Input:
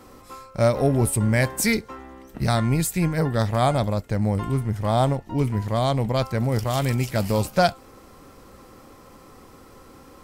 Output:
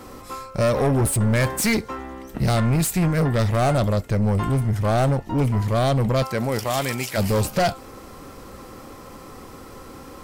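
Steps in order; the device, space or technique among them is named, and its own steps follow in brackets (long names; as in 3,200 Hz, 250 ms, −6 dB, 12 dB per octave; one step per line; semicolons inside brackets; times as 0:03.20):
0:06.22–0:07.17: high-pass filter 290 Hz → 800 Hz 6 dB per octave
saturation between pre-emphasis and de-emphasis (high-shelf EQ 4,400 Hz +6 dB; soft clipping −22.5 dBFS, distortion −8 dB; high-shelf EQ 4,400 Hz −6 dB)
level +7 dB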